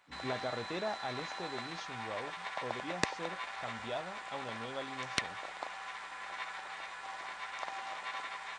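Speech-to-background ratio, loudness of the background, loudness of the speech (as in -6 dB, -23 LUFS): -2.5 dB, -41.0 LUFS, -43.5 LUFS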